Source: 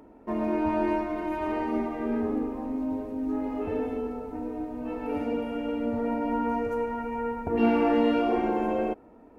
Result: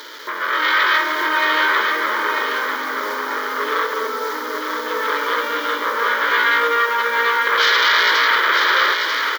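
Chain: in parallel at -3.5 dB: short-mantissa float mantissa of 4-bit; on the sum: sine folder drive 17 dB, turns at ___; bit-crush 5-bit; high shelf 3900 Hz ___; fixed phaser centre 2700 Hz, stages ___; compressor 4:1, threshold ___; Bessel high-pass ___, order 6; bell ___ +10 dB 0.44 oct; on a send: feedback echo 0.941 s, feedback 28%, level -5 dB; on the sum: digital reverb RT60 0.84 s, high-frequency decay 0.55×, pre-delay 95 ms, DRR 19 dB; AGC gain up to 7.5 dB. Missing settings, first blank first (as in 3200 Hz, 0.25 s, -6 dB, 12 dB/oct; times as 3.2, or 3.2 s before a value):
-6.5 dBFS, -3 dB, 6, -19 dBFS, 750 Hz, 3000 Hz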